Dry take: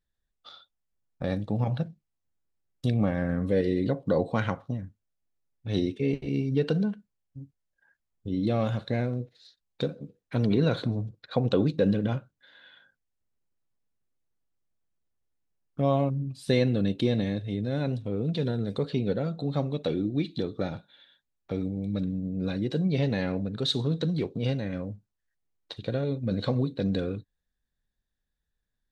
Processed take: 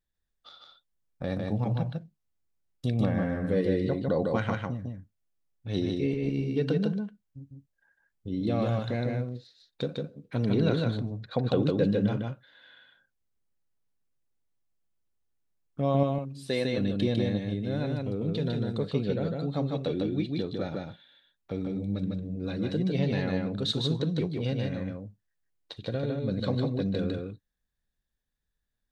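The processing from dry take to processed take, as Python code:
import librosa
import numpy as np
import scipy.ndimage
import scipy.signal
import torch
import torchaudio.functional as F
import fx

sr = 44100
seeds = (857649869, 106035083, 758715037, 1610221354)

y = fx.highpass(x, sr, hz=370.0, slope=6, at=(16.03, 16.78))
y = y + 10.0 ** (-3.0 / 20.0) * np.pad(y, (int(152 * sr / 1000.0), 0))[:len(y)]
y = y * librosa.db_to_amplitude(-2.5)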